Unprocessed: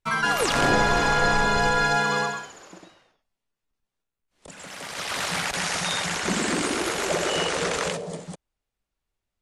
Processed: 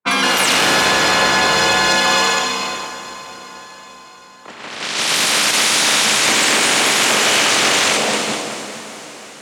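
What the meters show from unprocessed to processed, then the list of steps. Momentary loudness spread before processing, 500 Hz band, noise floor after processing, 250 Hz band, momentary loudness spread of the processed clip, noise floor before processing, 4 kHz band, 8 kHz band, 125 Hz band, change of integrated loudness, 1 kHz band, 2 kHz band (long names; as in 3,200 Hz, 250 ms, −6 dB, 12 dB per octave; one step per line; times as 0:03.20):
15 LU, +5.5 dB, −39 dBFS, +5.0 dB, 17 LU, −85 dBFS, +15.0 dB, +14.5 dB, 0.0 dB, +10.0 dB, +7.0 dB, +10.0 dB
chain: ceiling on every frequency bin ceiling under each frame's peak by 15 dB
downward compressor, threshold −24 dBFS, peak gain reduction 8 dB
frequency shifter +44 Hz
leveller curve on the samples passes 3
high-pass filter 160 Hz 12 dB per octave
low-pass that shuts in the quiet parts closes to 1,600 Hz, open at −17 dBFS
feedback delay with all-pass diffusion 667 ms, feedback 46%, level −13.5 dB
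reverb whose tail is shaped and stops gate 490 ms flat, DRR 2.5 dB
dynamic equaliser 3,100 Hz, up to +4 dB, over −30 dBFS, Q 0.9
level +1 dB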